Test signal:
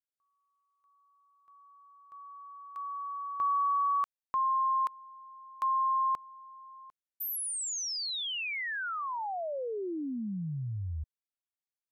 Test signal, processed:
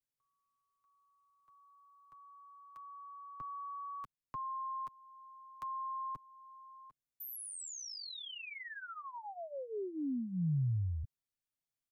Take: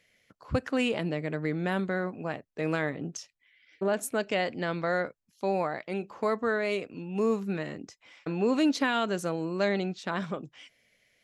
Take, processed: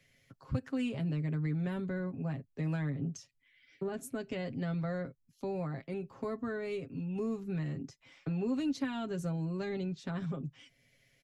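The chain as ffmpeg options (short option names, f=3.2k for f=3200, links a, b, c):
-filter_complex "[0:a]bass=f=250:g=11,treble=f=4k:g=2,aecho=1:1:7.4:0.7,acrossover=split=150|380[a][b][c];[a]acompressor=threshold=-34dB:ratio=3[d];[b]acompressor=threshold=-37dB:ratio=2.5[e];[c]acompressor=threshold=-58dB:ratio=1.5[f];[d][e][f]amix=inputs=3:normalize=0,volume=-4dB"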